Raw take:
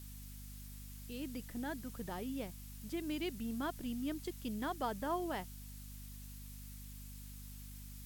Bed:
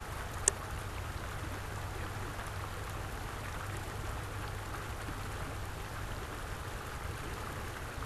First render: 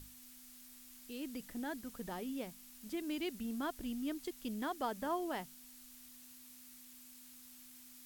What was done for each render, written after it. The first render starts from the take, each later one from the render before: hum notches 50/100/150/200 Hz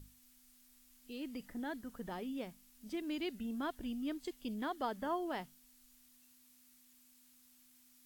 noise print and reduce 9 dB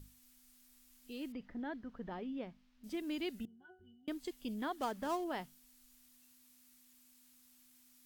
1.32–2.84 s: distance through air 240 m; 3.45–4.08 s: pitch-class resonator F#, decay 0.35 s; 4.78–5.24 s: dead-time distortion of 0.097 ms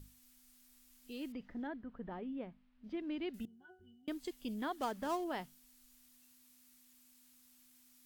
1.67–3.34 s: distance through air 300 m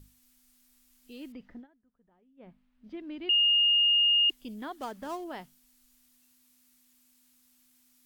1.55–2.49 s: dip -23 dB, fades 0.12 s; 3.29–4.30 s: bleep 2.84 kHz -20 dBFS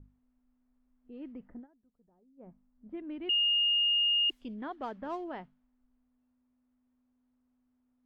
low-pass 2.3 kHz 6 dB/octave; level-controlled noise filter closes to 780 Hz, open at -29 dBFS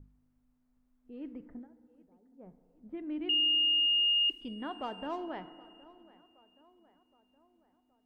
tape echo 770 ms, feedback 57%, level -20 dB, low-pass 2.2 kHz; FDN reverb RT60 2.3 s, low-frequency decay 0.95×, high-frequency decay 0.3×, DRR 12.5 dB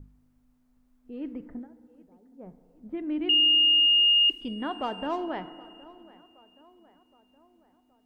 trim +7 dB

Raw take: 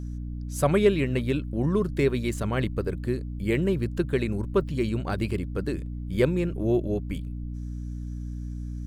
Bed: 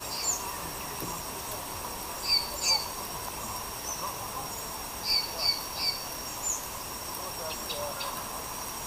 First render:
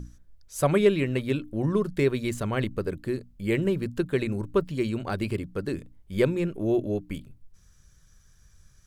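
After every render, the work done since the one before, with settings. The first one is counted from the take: hum notches 60/120/180/240/300 Hz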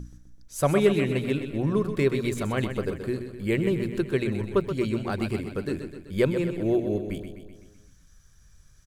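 feedback delay 127 ms, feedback 58%, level -9 dB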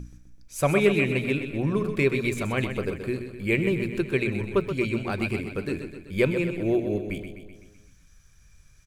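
peaking EQ 2.4 kHz +12 dB 0.25 oct; de-hum 214.7 Hz, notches 38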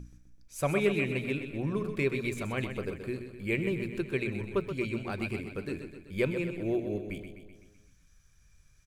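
trim -6.5 dB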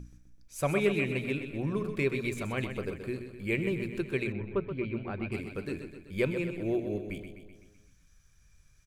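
4.32–5.32 s: distance through air 400 m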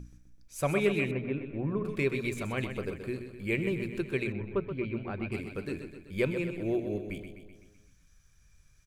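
1.11–1.85 s: low-pass 1.6 kHz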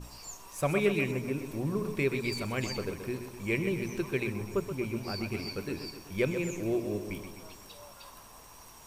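add bed -15.5 dB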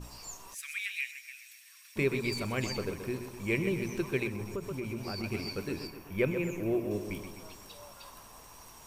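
0.54–1.96 s: elliptic high-pass 1.8 kHz, stop band 70 dB; 4.27–5.24 s: compression 5:1, threshold -32 dBFS; 5.87–6.91 s: high-order bell 5.7 kHz -8.5 dB

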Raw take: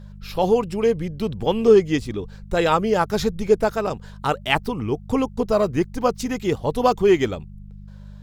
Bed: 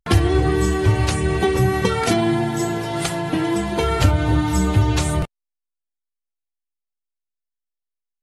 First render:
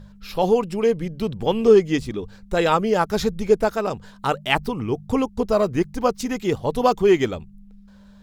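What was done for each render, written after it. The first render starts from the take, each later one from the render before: de-hum 50 Hz, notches 3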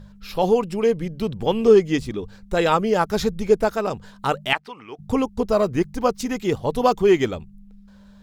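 4.53–4.99 s: band-pass filter 2 kHz, Q 0.96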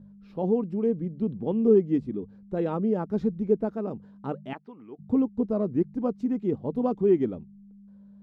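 band-pass filter 240 Hz, Q 1.6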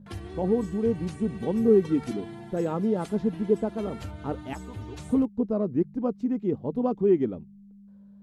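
add bed -22.5 dB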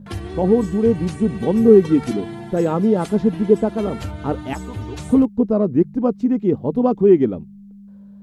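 trim +9 dB

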